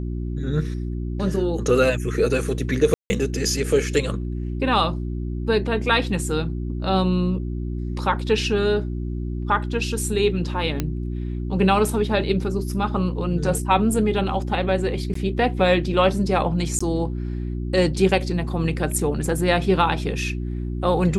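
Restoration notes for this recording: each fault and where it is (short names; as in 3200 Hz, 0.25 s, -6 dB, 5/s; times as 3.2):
hum 60 Hz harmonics 6 -27 dBFS
2.94–3.1 gap 0.16 s
10.8 pop -9 dBFS
15.14–15.15 gap 14 ms
16.79–16.8 gap 15 ms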